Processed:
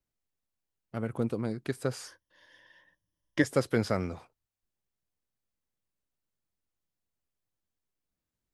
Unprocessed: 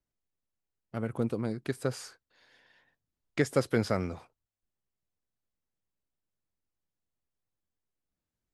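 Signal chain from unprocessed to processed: 2.07–3.44 ripple EQ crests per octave 1.2, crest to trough 13 dB

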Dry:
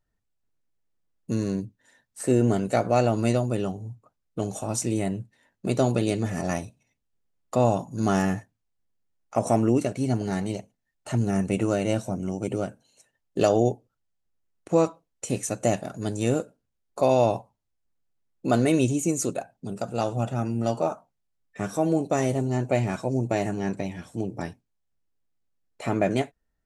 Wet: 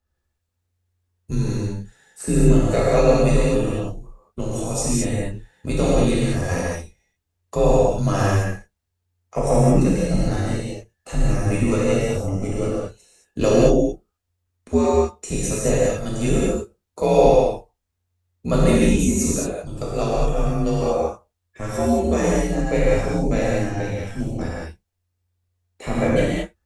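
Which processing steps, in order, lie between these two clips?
non-linear reverb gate 0.25 s flat, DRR -6.5 dB; frequency shift -89 Hz; gain -1 dB

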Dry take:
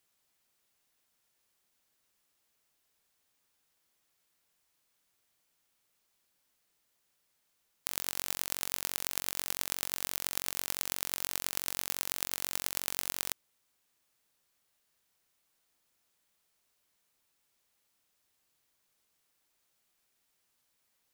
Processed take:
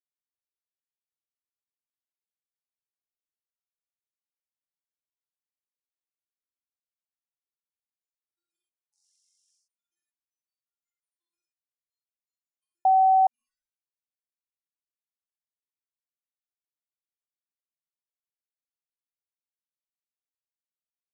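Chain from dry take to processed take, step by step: spectral trails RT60 0.98 s; 8.93–9.57 LPF 1000 Hz 12 dB/oct; spectral gate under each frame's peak -30 dB weak; limiter -56 dBFS, peak gain reduction 8 dB; non-linear reverb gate 0.14 s flat, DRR -7 dB; 12.85–13.27 bleep 761 Hz -14.5 dBFS; MP3 48 kbps 48000 Hz

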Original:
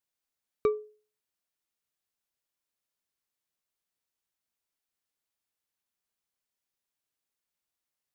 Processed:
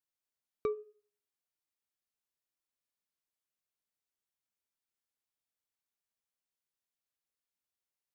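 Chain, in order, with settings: de-hum 413.7 Hz, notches 7; gain -6.5 dB

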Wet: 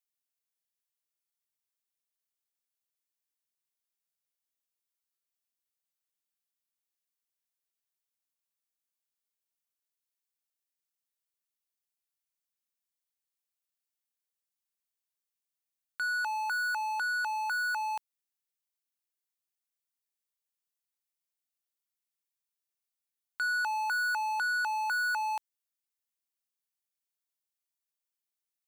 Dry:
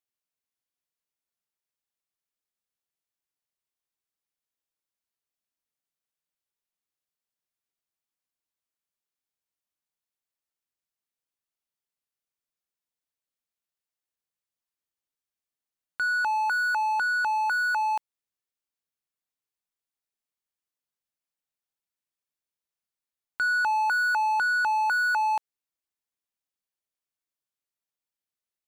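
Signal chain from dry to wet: tilt +2.5 dB/oct; gain -7 dB

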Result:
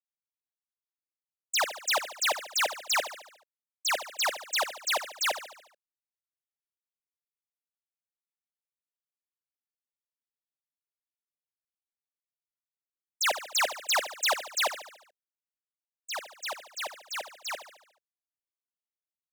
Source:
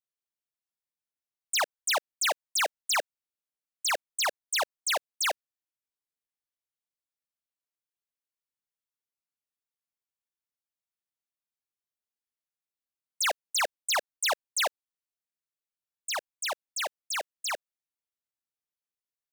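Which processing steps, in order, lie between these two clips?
13.25–14.47 G.711 law mismatch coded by mu; expander -29 dBFS; on a send: feedback echo 72 ms, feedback 54%, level -12 dB

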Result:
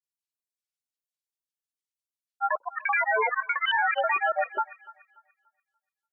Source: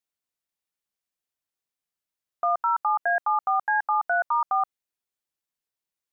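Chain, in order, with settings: per-bin expansion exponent 1.5; grains, pitch spread up and down by 12 st; thin delay 0.29 s, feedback 30%, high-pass 1600 Hz, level -13 dB

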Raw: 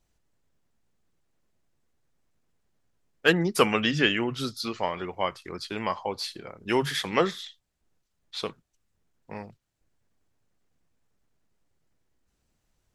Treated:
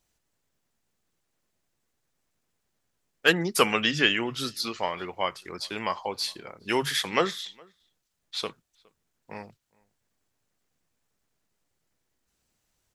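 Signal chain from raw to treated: tilt +1.5 dB/oct; outdoor echo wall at 71 m, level -28 dB

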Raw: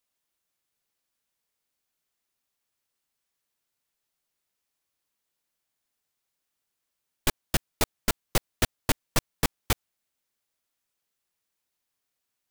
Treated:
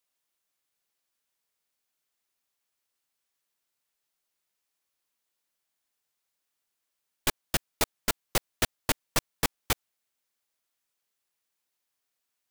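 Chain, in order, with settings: low shelf 280 Hz -6.5 dB

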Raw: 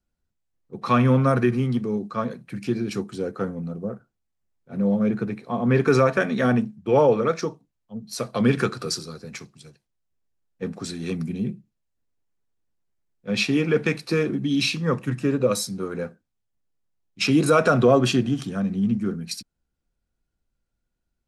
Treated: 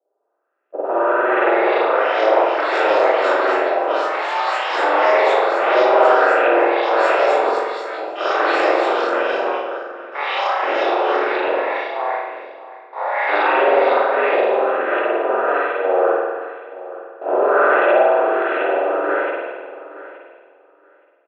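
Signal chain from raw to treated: per-bin compression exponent 0.2; gate -13 dBFS, range -44 dB; in parallel at -8.5 dB: decimation with a swept rate 23×, swing 160% 0.28 Hz; on the sum: mistuned SSB +100 Hz 260–3400 Hz; LFO low-pass saw up 1.4 Hz 610–2600 Hz; on a send: feedback echo 0.872 s, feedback 16%, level -16.5 dB; on the sum: spring tank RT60 1.4 s, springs 46 ms, chirp 35 ms, DRR -9 dB; echoes that change speed 0.757 s, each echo +6 st, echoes 3, each echo -6 dB; gain -18 dB

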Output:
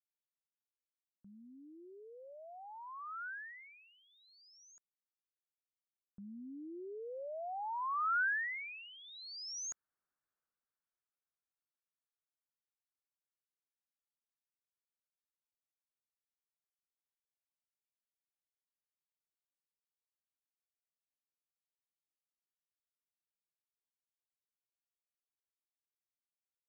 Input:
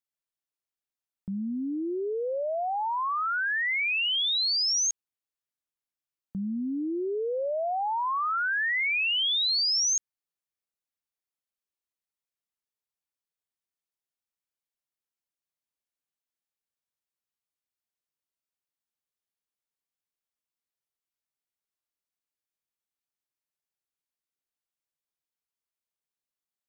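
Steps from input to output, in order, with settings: Doppler pass-by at 10.07, 9 m/s, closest 3.7 m; resonant high shelf 2200 Hz -13.5 dB, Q 3; gain +1.5 dB

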